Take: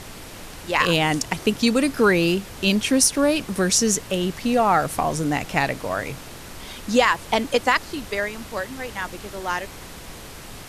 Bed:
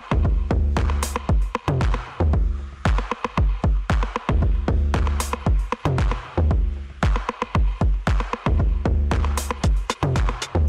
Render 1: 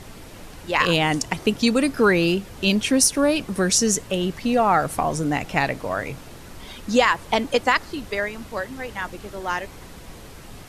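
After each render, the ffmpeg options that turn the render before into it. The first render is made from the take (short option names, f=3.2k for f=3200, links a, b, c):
-af "afftdn=nr=6:nf=-39"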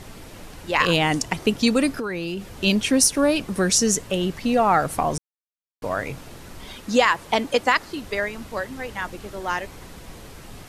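-filter_complex "[0:a]asettb=1/sr,asplit=3[a][b][c];[a]atrim=end=1.904[d];[b]atrim=start=1.9:end=2.54,asetpts=PTS-STARTPTS,afade=t=in:d=0.004:c=qsin,afade=t=out:st=0.636:d=0.004:c=qsin,acompressor=threshold=-24dB:ratio=10:attack=3.2:release=140:knee=1:detection=peak[e];[c]atrim=start=2.536[f];[d][e]acrossfade=d=0.004:c1=hsin:c2=qsin[g];[g][f]acrossfade=d=0.004:c1=qsin:c2=hsin,asettb=1/sr,asplit=3[h][i][j];[h]atrim=end=6.774[k];[i]atrim=start=6.77:end=8.05,asetpts=PTS-STARTPTS,afade=t=in:d=0.004:c=qsin,afade=t=out:st=1.276:d=0.004:c=qsin,lowshelf=f=86:g=-9.5[l];[j]atrim=start=8.046[m];[k][l]acrossfade=d=0.004:c1=hsin:c2=qsin[n];[n][m]acrossfade=d=0.004:c1=qsin:c2=hsin,asplit=3[o][p][q];[o]atrim=end=5.18,asetpts=PTS-STARTPTS,afade=t=out:st=5.176:d=0.004:c=hsin[r];[p]atrim=start=5.18:end=5.82,asetpts=PTS-STARTPTS,volume=0[s];[q]atrim=start=5.82,asetpts=PTS-STARTPTS,afade=t=in:d=0.004:c=hsin[t];[r][s][t]concat=n=3:v=0:a=1"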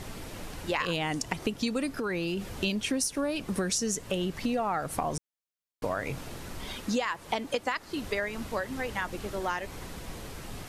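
-af "acompressor=threshold=-27dB:ratio=6"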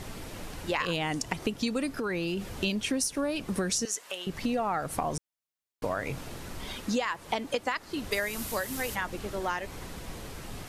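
-filter_complex "[0:a]asettb=1/sr,asplit=3[a][b][c];[a]atrim=end=3.854[d];[b]atrim=start=3.85:end=4.27,asetpts=PTS-STARTPTS,afade=t=in:d=0.004:c=qsin,afade=t=out:st=0.416:d=0.004:c=qsin,highpass=840[e];[c]atrim=start=4.266[f];[d][e]acrossfade=d=0.004:c1=hsin:c2=qsin[g];[g][f]acrossfade=d=0.004:c1=qsin:c2=hsin,asplit=3[h][i][j];[h]afade=t=out:st=8.11:d=0.02[k];[i]aemphasis=mode=production:type=75fm,afade=t=in:st=8.11:d=0.02,afade=t=out:st=8.94:d=0.02[l];[j]afade=t=in:st=8.94:d=0.02[m];[k][l][m]amix=inputs=3:normalize=0"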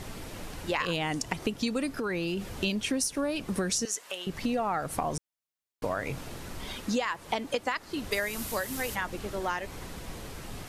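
-af anull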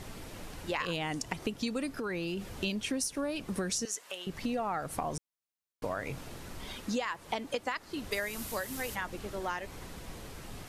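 -af "volume=-4dB"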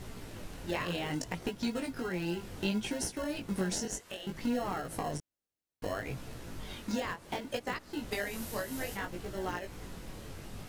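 -filter_complex "[0:a]asplit=2[a][b];[b]acrusher=samples=37:mix=1:aa=0.000001,volume=-5dB[c];[a][c]amix=inputs=2:normalize=0,flanger=delay=16:depth=7.3:speed=0.64"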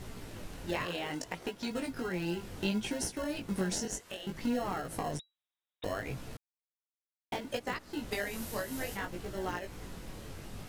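-filter_complex "[0:a]asettb=1/sr,asplit=3[a][b][c];[a]atrim=end=0.864[d];[b]atrim=start=0.86:end=1.71,asetpts=PTS-STARTPTS,afade=t=in:d=0.004:c=qsin,afade=t=out:st=0.846:d=0.004:c=qsin,bass=f=250:g=-9,treble=f=4k:g=-2[e];[c]atrim=start=1.706[f];[d][e]acrossfade=d=0.004:c1=hsin:c2=qsin[g];[g][f]acrossfade=d=0.004:c1=qsin:c2=hsin,asettb=1/sr,asplit=3[h][i][j];[h]atrim=end=5.194[k];[i]atrim=start=5.19:end=5.84,asetpts=PTS-STARTPTS,afade=t=in:d=0.004:c=qsin,afade=t=out:st=0.646:d=0.004:c=qsin,lowpass=f=3.3k:t=q:w=0.5098,lowpass=f=3.3k:t=q:w=0.6013,lowpass=f=3.3k:t=q:w=0.9,lowpass=f=3.3k:t=q:w=2.563,afreqshift=-3900[l];[j]atrim=start=5.836[m];[k][l]acrossfade=d=0.004:c1=hsin:c2=qsin[n];[n][m]acrossfade=d=0.004:c1=qsin:c2=hsin,asplit=3[o][p][q];[o]atrim=end=6.37,asetpts=PTS-STARTPTS,afade=t=out:st=6.366:d=0.004:c=hsin[r];[p]atrim=start=6.37:end=7.32,asetpts=PTS-STARTPTS,volume=0[s];[q]atrim=start=7.32,asetpts=PTS-STARTPTS,afade=t=in:d=0.004:c=hsin[t];[r][s][t]concat=n=3:v=0:a=1"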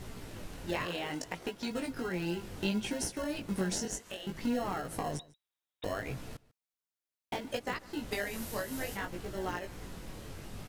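-filter_complex "[0:a]asplit=2[a][b];[b]adelay=145.8,volume=-22dB,highshelf=f=4k:g=-3.28[c];[a][c]amix=inputs=2:normalize=0"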